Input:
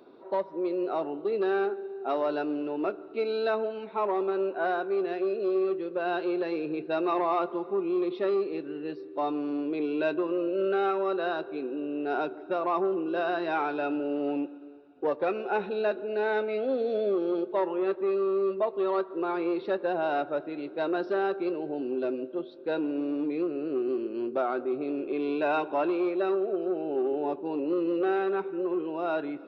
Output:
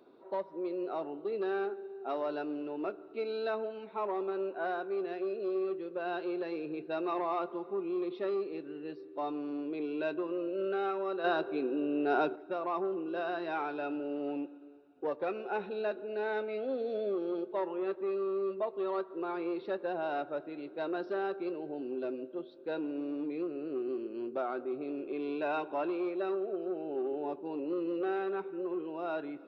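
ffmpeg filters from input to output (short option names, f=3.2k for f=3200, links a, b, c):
-filter_complex "[0:a]asettb=1/sr,asplit=3[a][b][c];[a]atrim=end=11.244[d];[b]atrim=start=11.24:end=12.36,asetpts=PTS-STARTPTS,afade=t=in:d=0.004:c=qsin,afade=t=out:st=1.116:d=0.004:c=qsin,acontrast=87[e];[c]atrim=start=12.356[f];[d][e]acrossfade=d=0.004:c1=hsin:c2=qsin[g];[g][f]acrossfade=d=0.004:c1=qsin:c2=hsin,volume=-6.5dB"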